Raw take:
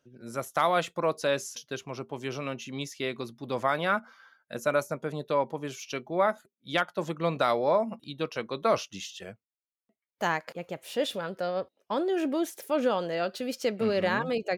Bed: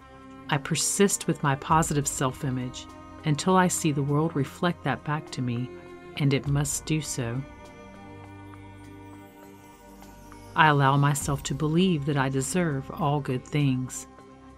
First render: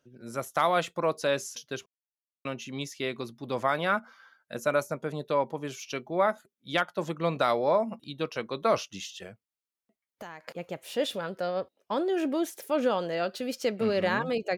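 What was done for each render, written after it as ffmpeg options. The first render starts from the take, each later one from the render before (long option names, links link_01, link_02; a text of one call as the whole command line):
ffmpeg -i in.wav -filter_complex "[0:a]asettb=1/sr,asplit=3[link_01][link_02][link_03];[link_01]atrim=end=9.264[link_04];[link_02]atrim=start=9.26:end=10.45,asetpts=PTS-STARTPTS,afade=type=in:duration=0.004:curve=qsin,afade=type=out:start_time=1.186:duration=0.004:curve=qsin,acompressor=threshold=-39dB:ratio=6:attack=3.2:release=140:knee=1:detection=peak[link_05];[link_03]atrim=start=10.446[link_06];[link_04][link_05]acrossfade=duration=0.004:curve1=hsin:curve2=qsin[link_07];[link_07][link_06]acrossfade=duration=0.004:curve1=qsin:curve2=hsin,asplit=3[link_08][link_09][link_10];[link_08]atrim=end=1.86,asetpts=PTS-STARTPTS,afade=type=out:start_time=1.856:duration=0.004:curve=hsin[link_11];[link_09]atrim=start=1.86:end=2.45,asetpts=PTS-STARTPTS,volume=0[link_12];[link_10]atrim=start=2.45,asetpts=PTS-STARTPTS,afade=type=in:duration=0.004:curve=hsin[link_13];[link_11][link_12][link_13]concat=n=3:v=0:a=1" out.wav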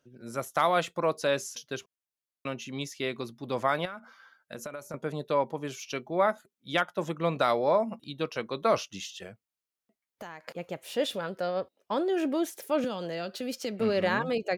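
ffmpeg -i in.wav -filter_complex "[0:a]asettb=1/sr,asplit=3[link_01][link_02][link_03];[link_01]atrim=end=3.854[link_04];[link_02]atrim=start=3.85:end=4.94,asetpts=PTS-STARTPTS,afade=type=in:duration=0.004:curve=qsin,afade=type=out:start_time=1.086:duration=0.004:curve=qsin,acompressor=threshold=-34dB:ratio=20:attack=3.2:release=140:knee=1:detection=peak[link_05];[link_03]atrim=start=4.936[link_06];[link_04][link_05]acrossfade=duration=0.004:curve1=hsin:curve2=qsin[link_07];[link_07][link_06]acrossfade=duration=0.004:curve1=qsin:curve2=hsin,asettb=1/sr,asplit=3[link_08][link_09][link_10];[link_08]atrim=end=6.734[link_11];[link_09]atrim=start=6.73:end=7.36,asetpts=PTS-STARTPTS,afade=type=in:duration=0.004:curve=qsin,afade=type=out:start_time=0.626:duration=0.004:curve=qsin,bandreject=frequency=4400:width=7.1[link_12];[link_10]atrim=start=7.356[link_13];[link_11][link_12]acrossfade=duration=0.004:curve1=hsin:curve2=qsin[link_14];[link_14][link_13]acrossfade=duration=0.004:curve1=qsin:curve2=hsin,asettb=1/sr,asplit=3[link_15][link_16][link_17];[link_15]atrim=end=12.844[link_18];[link_16]atrim=start=12.84:end=13.8,asetpts=PTS-STARTPTS,afade=type=in:duration=0.004:curve=qsin,afade=type=out:start_time=0.956:duration=0.004:curve=qsin,acrossover=split=280|3000[link_19][link_20][link_21];[link_20]acompressor=threshold=-33dB:ratio=6:attack=3.2:release=140:knee=2.83:detection=peak[link_22];[link_19][link_22][link_21]amix=inputs=3:normalize=0[link_23];[link_17]atrim=start=13.796[link_24];[link_18][link_23]acrossfade=duration=0.004:curve1=hsin:curve2=qsin[link_25];[link_25][link_24]acrossfade=duration=0.004:curve1=qsin:curve2=hsin" out.wav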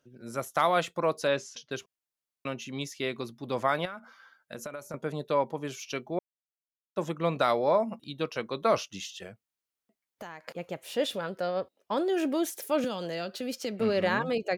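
ffmpeg -i in.wav -filter_complex "[0:a]asettb=1/sr,asplit=3[link_01][link_02][link_03];[link_01]atrim=end=1.284[link_04];[link_02]atrim=start=1.28:end=1.71,asetpts=PTS-STARTPTS,afade=type=in:duration=0.004:curve=qsin,afade=type=out:start_time=0.426:duration=0.004:curve=qsin,lowpass=5100[link_05];[link_03]atrim=start=1.706[link_06];[link_04][link_05]acrossfade=duration=0.004:curve1=hsin:curve2=qsin[link_07];[link_07][link_06]acrossfade=duration=0.004:curve1=qsin:curve2=hsin,asettb=1/sr,asplit=3[link_08][link_09][link_10];[link_08]atrim=end=11.974[link_11];[link_09]atrim=start=11.97:end=13.24,asetpts=PTS-STARTPTS,afade=type=in:duration=0.004:curve=qsin,afade=type=out:start_time=1.266:duration=0.004:curve=qsin,highshelf=frequency=4100:gain=5.5[link_12];[link_10]atrim=start=13.236[link_13];[link_11][link_12]acrossfade=duration=0.004:curve1=hsin:curve2=qsin[link_14];[link_14][link_13]acrossfade=duration=0.004:curve1=qsin:curve2=hsin,asplit=3[link_15][link_16][link_17];[link_15]atrim=end=6.19,asetpts=PTS-STARTPTS,afade=type=out:start_time=6.186:duration=0.004:curve=hsin[link_18];[link_16]atrim=start=6.19:end=6.96,asetpts=PTS-STARTPTS,volume=0[link_19];[link_17]atrim=start=6.96,asetpts=PTS-STARTPTS,afade=type=in:duration=0.004:curve=hsin[link_20];[link_18][link_19][link_20]concat=n=3:v=0:a=1" out.wav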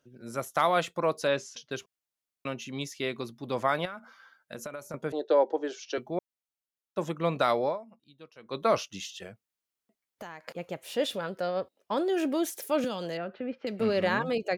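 ffmpeg -i in.wav -filter_complex "[0:a]asettb=1/sr,asplit=3[link_01][link_02][link_03];[link_01]atrim=end=5.124[link_04];[link_02]atrim=start=5.12:end=5.98,asetpts=PTS-STARTPTS,afade=type=in:duration=0.004:curve=qsin,afade=type=out:start_time=0.856:duration=0.004:curve=qsin,highpass=frequency=310:width=0.5412,highpass=frequency=310:width=1.3066,equalizer=frequency=330:width_type=q:width=4:gain=10,equalizer=frequency=500:width_type=q:width=4:gain=7,equalizer=frequency=760:width_type=q:width=4:gain=7,equalizer=frequency=1100:width_type=q:width=4:gain=-8,equalizer=frequency=1600:width_type=q:width=4:gain=6,equalizer=frequency=2400:width_type=q:width=4:gain=-9,lowpass=frequency=6000:width=0.5412,lowpass=frequency=6000:width=1.3066[link_05];[link_03]atrim=start=5.976[link_06];[link_04][link_05]acrossfade=duration=0.004:curve1=hsin:curve2=qsin[link_07];[link_07][link_06]acrossfade=duration=0.004:curve1=qsin:curve2=hsin,asettb=1/sr,asplit=3[link_08][link_09][link_10];[link_08]atrim=end=13.174[link_11];[link_09]atrim=start=13.17:end=13.67,asetpts=PTS-STARTPTS,afade=type=in:duration=0.004:curve=qsin,afade=type=out:start_time=0.496:duration=0.004:curve=qsin,lowpass=frequency=2200:width=0.5412,lowpass=frequency=2200:width=1.3066[link_12];[link_10]atrim=start=13.666[link_13];[link_11][link_12]acrossfade=duration=0.004:curve1=hsin:curve2=qsin[link_14];[link_14][link_13]acrossfade=duration=0.004:curve1=qsin:curve2=hsin,asplit=3[link_15][link_16][link_17];[link_15]atrim=end=7.82,asetpts=PTS-STARTPTS,afade=type=out:start_time=7.65:duration=0.17:curve=qua:silence=0.11885[link_18];[link_16]atrim=start=7.82:end=8.38,asetpts=PTS-STARTPTS,volume=-18.5dB[link_19];[link_17]atrim=start=8.38,asetpts=PTS-STARTPTS,afade=type=in:duration=0.17:curve=qua:silence=0.11885[link_20];[link_18][link_19][link_20]concat=n=3:v=0:a=1" out.wav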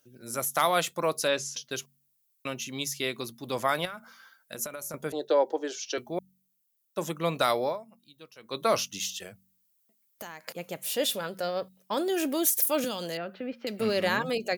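ffmpeg -i in.wav -af "aemphasis=mode=production:type=75fm,bandreject=frequency=46.97:width_type=h:width=4,bandreject=frequency=93.94:width_type=h:width=4,bandreject=frequency=140.91:width_type=h:width=4,bandreject=frequency=187.88:width_type=h:width=4,bandreject=frequency=234.85:width_type=h:width=4" out.wav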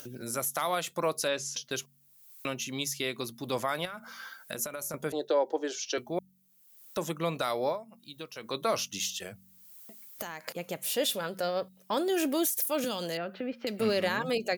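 ffmpeg -i in.wav -af "alimiter=limit=-18dB:level=0:latency=1:release=177,acompressor=mode=upward:threshold=-32dB:ratio=2.5" out.wav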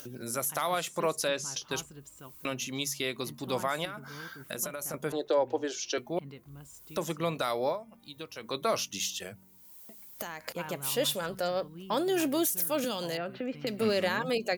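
ffmpeg -i in.wav -i bed.wav -filter_complex "[1:a]volume=-23.5dB[link_01];[0:a][link_01]amix=inputs=2:normalize=0" out.wav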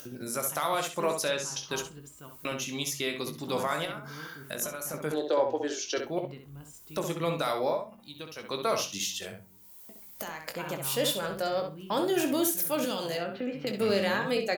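ffmpeg -i in.wav -filter_complex "[0:a]asplit=2[link_01][link_02];[link_02]adelay=20,volume=-9dB[link_03];[link_01][link_03]amix=inputs=2:normalize=0,asplit=2[link_04][link_05];[link_05]adelay=65,lowpass=frequency=3400:poles=1,volume=-5.5dB,asplit=2[link_06][link_07];[link_07]adelay=65,lowpass=frequency=3400:poles=1,volume=0.18,asplit=2[link_08][link_09];[link_09]adelay=65,lowpass=frequency=3400:poles=1,volume=0.18[link_10];[link_04][link_06][link_08][link_10]amix=inputs=4:normalize=0" out.wav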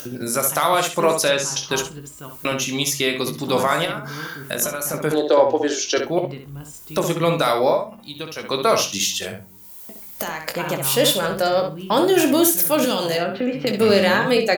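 ffmpeg -i in.wav -af "volume=11dB" out.wav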